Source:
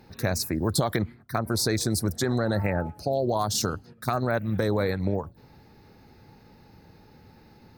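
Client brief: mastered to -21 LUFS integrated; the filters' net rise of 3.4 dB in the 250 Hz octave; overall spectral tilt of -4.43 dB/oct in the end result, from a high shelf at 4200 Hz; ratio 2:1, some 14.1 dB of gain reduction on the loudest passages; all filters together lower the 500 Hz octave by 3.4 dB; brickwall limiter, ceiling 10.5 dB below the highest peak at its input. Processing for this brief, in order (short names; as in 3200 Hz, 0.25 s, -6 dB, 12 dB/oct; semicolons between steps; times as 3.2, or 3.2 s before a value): bell 250 Hz +6 dB; bell 500 Hz -6.5 dB; high shelf 4200 Hz +7.5 dB; compressor 2:1, threshold -44 dBFS; gain +21.5 dB; limiter -9.5 dBFS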